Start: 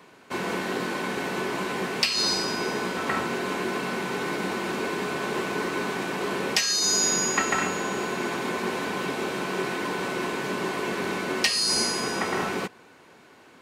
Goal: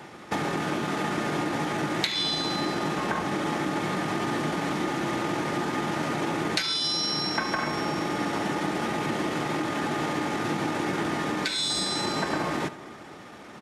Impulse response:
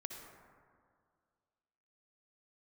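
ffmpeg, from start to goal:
-filter_complex "[0:a]acompressor=threshold=-33dB:ratio=6,asetrate=36028,aresample=44100,atempo=1.22405,asplit=2[link_01][link_02];[1:a]atrim=start_sample=2205,adelay=74[link_03];[link_02][link_03]afir=irnorm=-1:irlink=0,volume=-11.5dB[link_04];[link_01][link_04]amix=inputs=2:normalize=0,volume=8dB"

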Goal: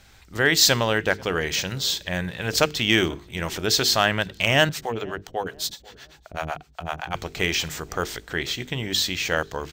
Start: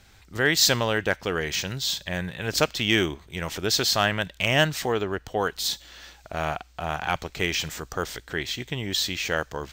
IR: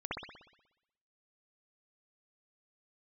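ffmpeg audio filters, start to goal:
-filter_complex "[0:a]bandreject=frequency=50:width_type=h:width=6,bandreject=frequency=100:width_type=h:width=6,bandreject=frequency=150:width_type=h:width=6,bandreject=frequency=200:width_type=h:width=6,bandreject=frequency=250:width_type=h:width=6,bandreject=frequency=300:width_type=h:width=6,bandreject=frequency=350:width_type=h:width=6,bandreject=frequency=400:width_type=h:width=6,bandreject=frequency=450:width_type=h:width=6,asettb=1/sr,asplit=3[link_01][link_02][link_03];[link_01]atrim=end=4.694[link_04];[link_02]atrim=start=4.69:end=7.15,asetpts=PTS-STARTPTS,afade=type=in:duration=0.004:curve=qsin,afade=type=out:start_time=2.456:duration=0.004:curve=qsin,acrossover=split=420[link_05][link_06];[link_05]aeval=exprs='val(0)*(1-1/2+1/2*cos(2*PI*7.9*n/s))':channel_layout=same[link_07];[link_06]aeval=exprs='val(0)*(1-1/2-1/2*cos(2*PI*7.9*n/s))':channel_layout=same[link_08];[link_07][link_08]amix=inputs=2:normalize=0[link_09];[link_03]atrim=start=7.146[link_10];[link_04][link_09]acrossfade=duration=0.004:curve1=hsin:curve2=qsin[link_11];[link_11][link_10]acrossfade=duration=0.004:curve1=qsin:curve2=hsin,asplit=2[link_12][link_13];[link_13]adelay=491,lowpass=frequency=950:poles=1,volume=-21dB,asplit=2[link_14][link_15];[link_15]adelay=491,lowpass=frequency=950:poles=1,volume=0.45,asplit=2[link_16][link_17];[link_17]adelay=491,lowpass=frequency=950:poles=1,volume=0.45[link_18];[link_12][link_14][link_16][link_18]amix=inputs=4:normalize=0,volume=2.5dB"

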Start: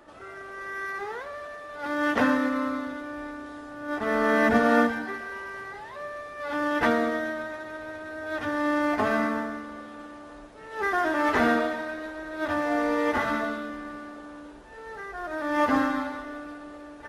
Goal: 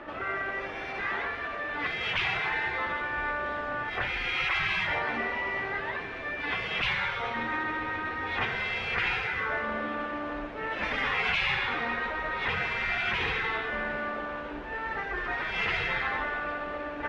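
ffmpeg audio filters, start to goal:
ffmpeg -i in.wav -af "afftfilt=real='re*lt(hypot(re,im),0.0631)':imag='im*lt(hypot(re,im),0.0631)':win_size=1024:overlap=0.75,lowpass=frequency=2500:width_type=q:width=1.8,volume=9dB" out.wav

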